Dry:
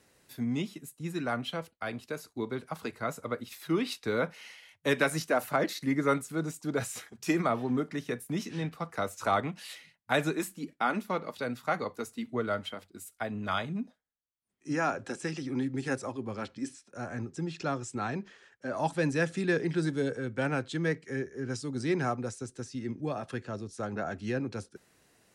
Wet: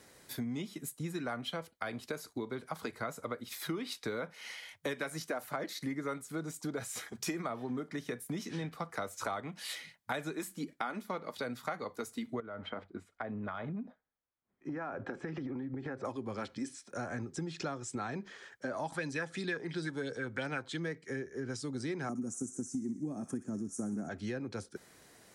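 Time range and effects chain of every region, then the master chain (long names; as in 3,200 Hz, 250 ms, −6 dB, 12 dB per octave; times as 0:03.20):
0:12.40–0:16.05: low-pass filter 1,700 Hz + downward compressor 12 to 1, threshold −37 dBFS
0:18.92–0:20.80: upward compression, threshold −34 dBFS + auto-filter bell 2.9 Hz 840–5,000 Hz +12 dB
0:22.09–0:24.09: drawn EQ curve 130 Hz 0 dB, 190 Hz +12 dB, 290 Hz +11 dB, 490 Hz −6 dB, 770 Hz −6 dB, 2,600 Hz −15 dB, 4,100 Hz −22 dB, 6,400 Hz +8 dB + delay with a high-pass on its return 62 ms, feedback 64%, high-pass 1,800 Hz, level −7 dB
whole clip: low-shelf EQ 210 Hz −3.5 dB; notch filter 2,700 Hz, Q 9.8; downward compressor 6 to 1, threshold −42 dBFS; level +6.5 dB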